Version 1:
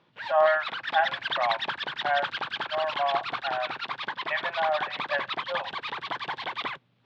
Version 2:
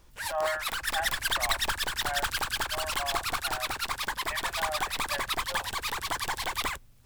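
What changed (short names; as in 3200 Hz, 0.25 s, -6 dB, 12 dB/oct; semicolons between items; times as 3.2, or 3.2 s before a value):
speech -9.0 dB; master: remove elliptic band-pass 140–3600 Hz, stop band 50 dB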